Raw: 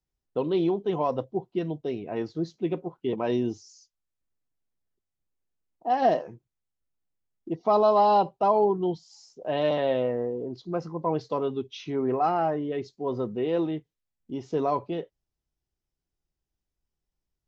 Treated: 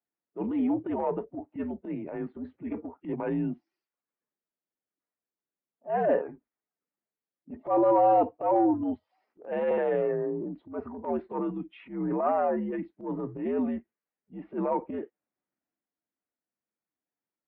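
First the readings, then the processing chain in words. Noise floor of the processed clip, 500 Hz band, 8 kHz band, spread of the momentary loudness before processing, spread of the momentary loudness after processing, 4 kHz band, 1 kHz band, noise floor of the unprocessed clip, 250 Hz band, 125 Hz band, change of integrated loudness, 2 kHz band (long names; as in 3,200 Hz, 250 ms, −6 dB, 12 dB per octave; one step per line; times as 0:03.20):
below −85 dBFS, −3.0 dB, can't be measured, 13 LU, 15 LU, below −15 dB, −3.0 dB, below −85 dBFS, 0.0 dB, −5.5 dB, −2.0 dB, −2.5 dB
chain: spectral magnitudes quantised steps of 15 dB
single-sideband voice off tune −81 Hz 280–2,300 Hz
transient designer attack −11 dB, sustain +4 dB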